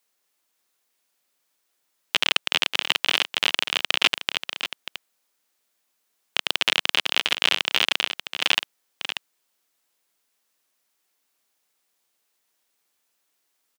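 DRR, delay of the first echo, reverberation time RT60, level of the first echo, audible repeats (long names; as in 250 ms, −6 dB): no reverb audible, 588 ms, no reverb audible, −9.5 dB, 1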